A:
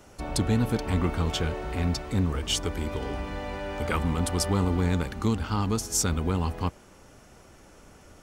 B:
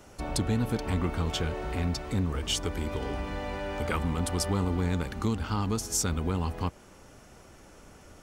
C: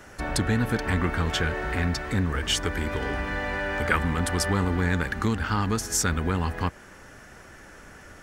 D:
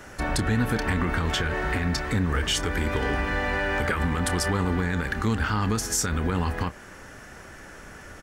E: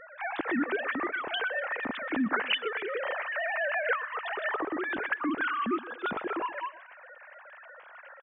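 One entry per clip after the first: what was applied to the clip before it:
compression 1.5:1, threshold -29 dBFS, peak gain reduction 4 dB
peaking EQ 1.7 kHz +13 dB 0.59 oct; trim +3 dB
peak limiter -18 dBFS, peak gain reduction 11 dB; doubling 28 ms -13.5 dB; trim +3 dB
formants replaced by sine waves; feedback delay 124 ms, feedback 42%, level -19 dB; trim -6.5 dB

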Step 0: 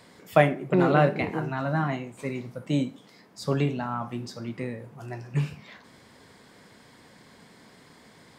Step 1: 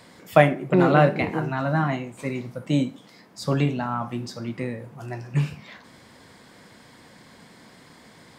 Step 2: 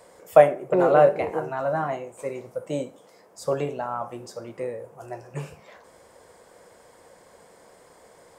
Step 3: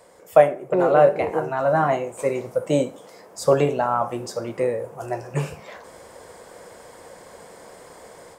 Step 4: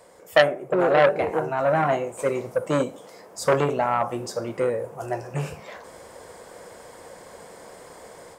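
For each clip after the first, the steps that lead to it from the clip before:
band-stop 420 Hz, Q 14; trim +3.5 dB
graphic EQ 125/250/500/2000/4000/8000 Hz -9/-12/+10/-5/-10/+4 dB; trim -1.5 dB
level rider gain up to 8.5 dB
transformer saturation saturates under 1.7 kHz

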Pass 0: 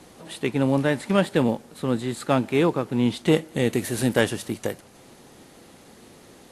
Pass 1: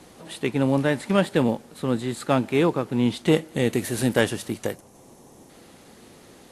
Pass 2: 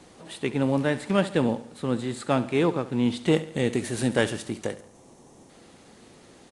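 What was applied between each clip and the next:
time-frequency box 4.75–5.50 s, 1.2–5.2 kHz -8 dB
feedback delay 70 ms, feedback 46%, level -15.5 dB; resampled via 22.05 kHz; trim -2.5 dB

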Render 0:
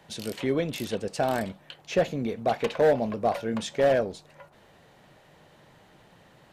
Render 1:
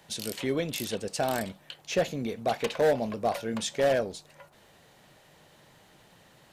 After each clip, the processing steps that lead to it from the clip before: treble shelf 3.6 kHz +10 dB; trim -3 dB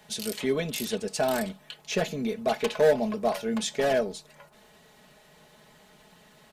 comb 4.7 ms, depth 71%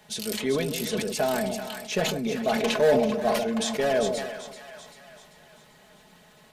two-band feedback delay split 800 Hz, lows 149 ms, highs 389 ms, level -8.5 dB; decay stretcher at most 40 dB/s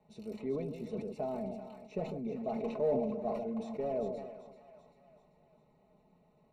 boxcar filter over 27 samples; trim -9 dB

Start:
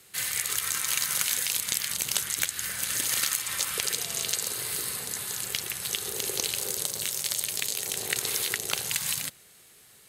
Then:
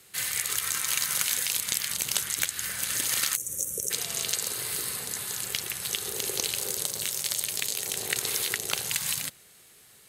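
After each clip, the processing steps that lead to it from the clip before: time-frequency box 3.36–3.91 s, 600–5500 Hz -25 dB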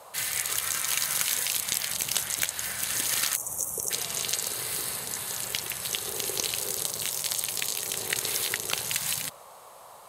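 band noise 490–1200 Hz -50 dBFS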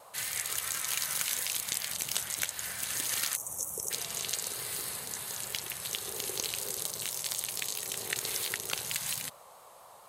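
vibrato 4.4 Hz 37 cents; trim -5 dB

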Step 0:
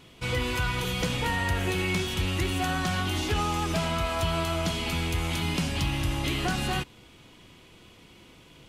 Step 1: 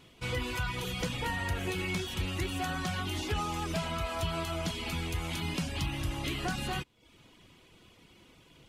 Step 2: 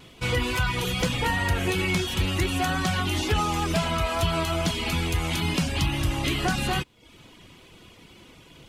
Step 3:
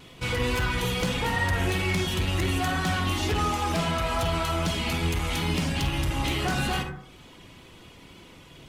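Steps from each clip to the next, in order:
reverb removal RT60 0.55 s; trim -4.5 dB
wow and flutter 21 cents; trim +8.5 dB
saturation -22 dBFS, distortion -14 dB; reverberation RT60 0.65 s, pre-delay 43 ms, DRR 3.5 dB

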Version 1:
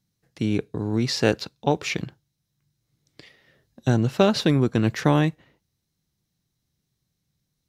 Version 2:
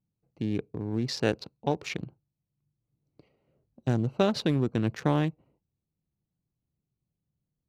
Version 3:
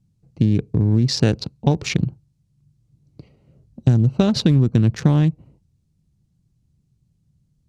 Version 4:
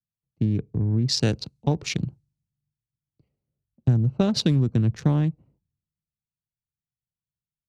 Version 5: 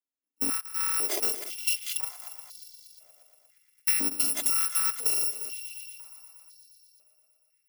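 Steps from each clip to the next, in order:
local Wiener filter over 25 samples; trim -6 dB
tone controls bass +14 dB, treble +12 dB; compression, threshold -20 dBFS, peak gain reduction 9 dB; distance through air 62 m; trim +8 dB
three bands expanded up and down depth 70%; trim -6.5 dB
bit-reversed sample order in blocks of 256 samples; multi-head delay 118 ms, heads second and third, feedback 57%, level -14 dB; step-sequenced high-pass 2 Hz 270–4300 Hz; trim -6 dB

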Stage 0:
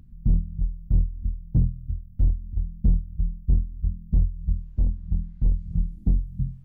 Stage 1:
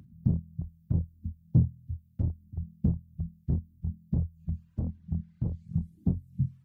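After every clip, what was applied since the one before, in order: reverb removal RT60 1 s; high-pass 87 Hz 24 dB/octave; trim +1.5 dB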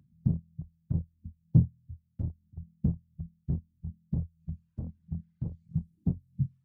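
peaking EQ 150 Hz +5.5 dB 0.27 oct; upward expansion 1.5:1, over -40 dBFS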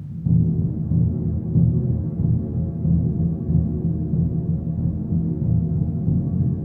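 spectral levelling over time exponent 0.4; pitch-shifted reverb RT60 3.2 s, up +7 st, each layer -8 dB, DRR -3.5 dB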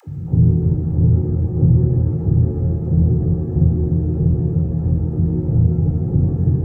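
phase dispersion lows, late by 78 ms, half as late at 380 Hz; reverberation RT60 1.0 s, pre-delay 22 ms, DRR 18 dB

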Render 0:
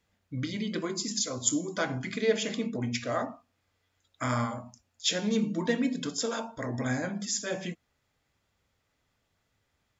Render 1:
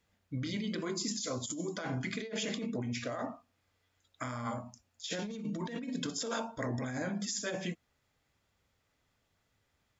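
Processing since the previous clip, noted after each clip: compressor with a negative ratio -33 dBFS, ratio -1; trim -3.5 dB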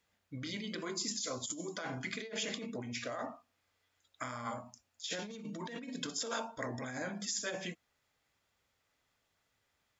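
bass shelf 350 Hz -9 dB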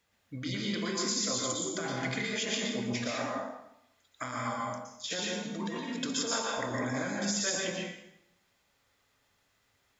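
plate-style reverb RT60 0.79 s, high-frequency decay 0.9×, pre-delay 105 ms, DRR -1.5 dB; trim +3 dB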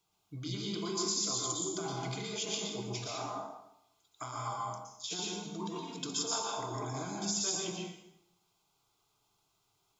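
static phaser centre 360 Hz, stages 8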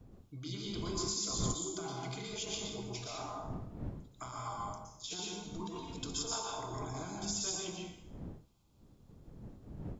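wind noise 190 Hz -44 dBFS; trim -3.5 dB

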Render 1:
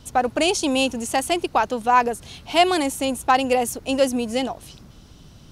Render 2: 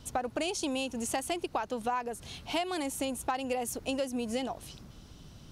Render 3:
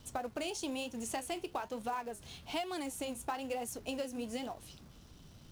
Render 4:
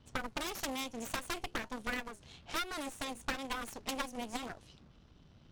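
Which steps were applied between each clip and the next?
compression 12:1, threshold -24 dBFS, peak gain reduction 14 dB; trim -4.5 dB
flange 1.1 Hz, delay 8.3 ms, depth 6.6 ms, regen -67%; in parallel at -8 dB: companded quantiser 4-bit; on the sum: trim -4.5 dB
level-controlled noise filter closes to 3 kHz, open at -33.5 dBFS; Chebyshev shaper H 3 -7 dB, 6 -11 dB, 8 -19 dB, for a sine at -24.5 dBFS; trim +5.5 dB

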